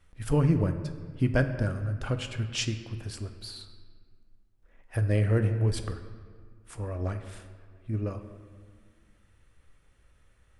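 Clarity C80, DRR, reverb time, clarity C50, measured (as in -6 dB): 10.5 dB, 7.0 dB, 1.8 s, 9.5 dB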